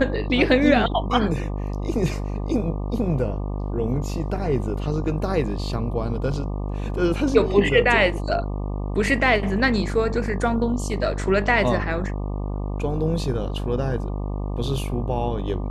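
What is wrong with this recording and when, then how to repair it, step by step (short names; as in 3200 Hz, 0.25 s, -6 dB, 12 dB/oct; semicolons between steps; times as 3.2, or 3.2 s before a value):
buzz 50 Hz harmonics 24 -27 dBFS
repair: de-hum 50 Hz, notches 24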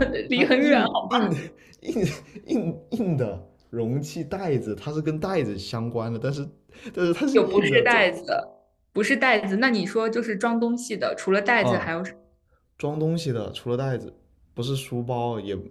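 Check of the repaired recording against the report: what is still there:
none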